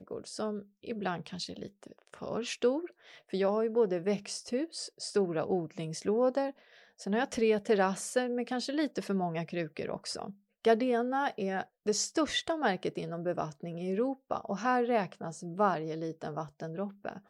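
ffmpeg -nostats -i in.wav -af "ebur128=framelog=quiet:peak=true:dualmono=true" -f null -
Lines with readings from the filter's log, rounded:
Integrated loudness:
  I:         -29.7 LUFS
  Threshold: -40.0 LUFS
Loudness range:
  LRA:         2.2 LU
  Threshold: -49.6 LUFS
  LRA low:   -30.5 LUFS
  LRA high:  -28.3 LUFS
True peak:
  Peak:      -15.2 dBFS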